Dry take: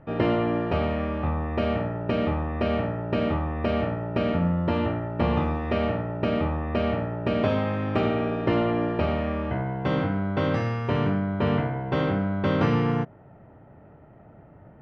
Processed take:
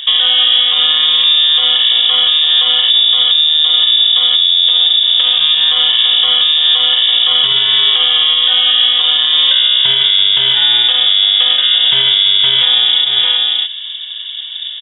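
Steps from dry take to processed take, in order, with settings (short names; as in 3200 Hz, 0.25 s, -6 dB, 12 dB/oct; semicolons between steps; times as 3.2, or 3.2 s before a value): 2.9–5.04 bell 100 Hz +12 dB 1.2 oct; tapped delay 0.334/0.623 s -12.5/-16 dB; compressor 16:1, threshold -30 dBFS, peak gain reduction 17.5 dB; bell 1100 Hz -14 dB 0.55 oct; inverted band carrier 3600 Hz; maximiser +26 dB; gain -1 dB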